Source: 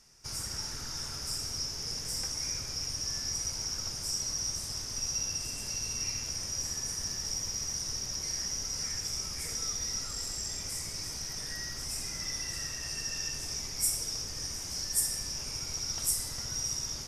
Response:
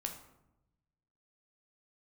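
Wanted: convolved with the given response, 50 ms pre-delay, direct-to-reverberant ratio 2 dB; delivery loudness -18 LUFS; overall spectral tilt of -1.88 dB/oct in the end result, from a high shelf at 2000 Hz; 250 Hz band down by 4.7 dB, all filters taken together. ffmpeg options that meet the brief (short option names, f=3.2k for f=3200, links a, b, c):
-filter_complex "[0:a]equalizer=f=250:t=o:g=-7,highshelf=f=2k:g=-4,asplit=2[a][b];[1:a]atrim=start_sample=2205,adelay=50[c];[b][c]afir=irnorm=-1:irlink=0,volume=-1.5dB[d];[a][d]amix=inputs=2:normalize=0,volume=16.5dB"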